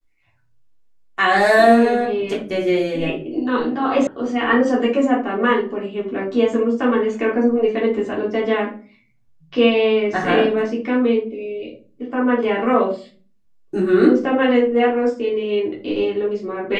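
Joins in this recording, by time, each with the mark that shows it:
4.07 s: sound stops dead

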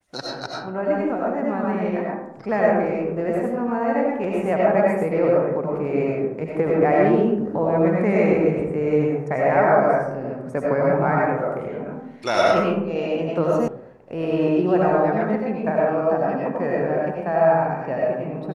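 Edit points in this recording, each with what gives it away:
13.68 s: sound stops dead

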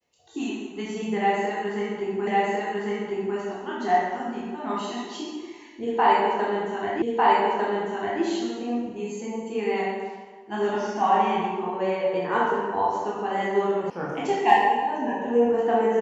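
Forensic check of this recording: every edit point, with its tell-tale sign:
2.27 s: repeat of the last 1.1 s
7.02 s: repeat of the last 1.2 s
13.90 s: sound stops dead

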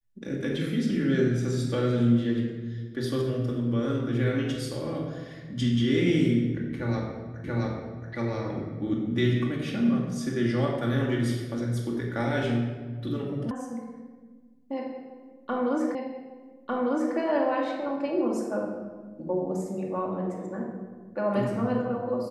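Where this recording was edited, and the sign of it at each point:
7.44 s: repeat of the last 0.68 s
13.51 s: sound stops dead
15.95 s: repeat of the last 1.2 s

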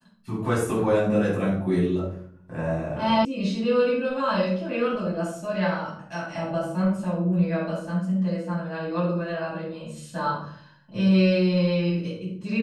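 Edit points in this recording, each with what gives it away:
3.25 s: sound stops dead

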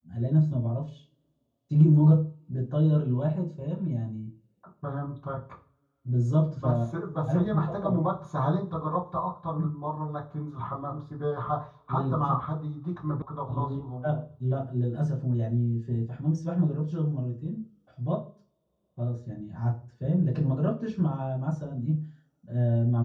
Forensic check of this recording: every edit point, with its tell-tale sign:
13.22 s: sound stops dead

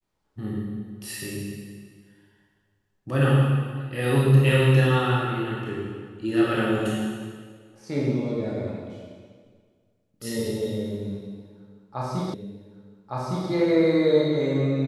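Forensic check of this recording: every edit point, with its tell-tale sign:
12.34 s: repeat of the last 1.16 s

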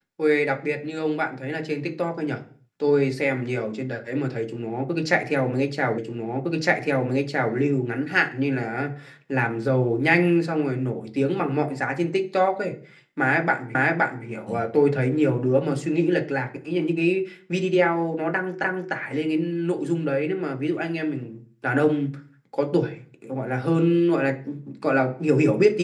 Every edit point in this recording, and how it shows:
5.98 s: repeat of the last 1.56 s
13.75 s: repeat of the last 0.52 s
18.64 s: repeat of the last 0.3 s

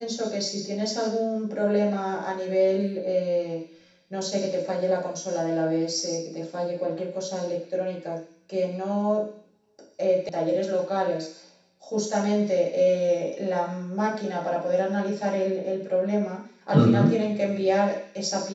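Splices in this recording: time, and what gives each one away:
10.29 s: sound stops dead

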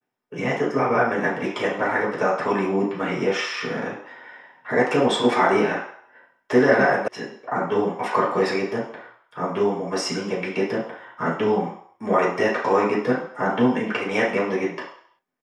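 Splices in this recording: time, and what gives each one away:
7.08 s: sound stops dead

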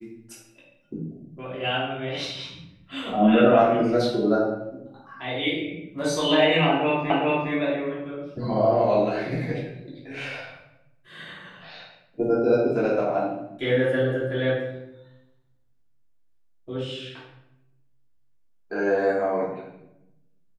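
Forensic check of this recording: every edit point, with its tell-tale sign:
7.10 s: repeat of the last 0.41 s

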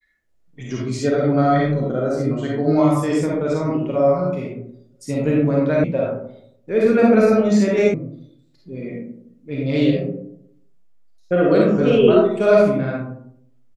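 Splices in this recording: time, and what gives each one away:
5.84 s: sound stops dead
7.94 s: sound stops dead

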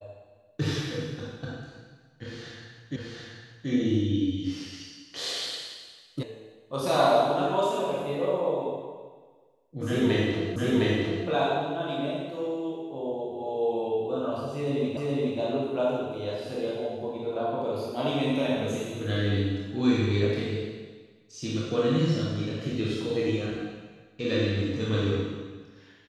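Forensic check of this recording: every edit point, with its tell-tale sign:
2.96 s: repeat of the last 0.73 s
6.23 s: sound stops dead
10.56 s: repeat of the last 0.71 s
14.97 s: repeat of the last 0.42 s

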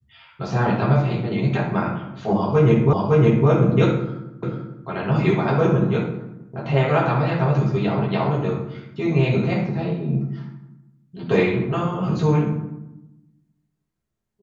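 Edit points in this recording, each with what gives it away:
2.93 s: repeat of the last 0.56 s
4.43 s: repeat of the last 0.44 s

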